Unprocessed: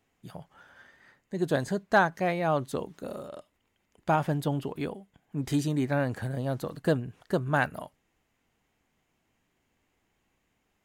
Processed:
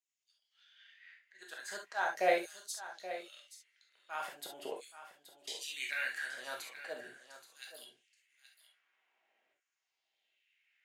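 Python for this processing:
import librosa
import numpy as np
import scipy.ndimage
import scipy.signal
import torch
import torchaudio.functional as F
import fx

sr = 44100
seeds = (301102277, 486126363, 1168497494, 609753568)

p1 = fx.env_lowpass(x, sr, base_hz=2800.0, full_db=-26.0)
p2 = scipy.signal.sosfilt(scipy.signal.butter(2, 250.0, 'highpass', fs=sr, output='sos'), p1)
p3 = fx.peak_eq(p2, sr, hz=980.0, db=-13.5, octaves=1.1)
p4 = fx.auto_swell(p3, sr, attack_ms=224.0)
p5 = fx.filter_lfo_highpass(p4, sr, shape='saw_down', hz=0.42, low_hz=570.0, high_hz=7600.0, q=2.4)
p6 = p5 + fx.echo_single(p5, sr, ms=826, db=-13.0, dry=0)
y = fx.rev_gated(p6, sr, seeds[0], gate_ms=90, shape='flat', drr_db=-1.0)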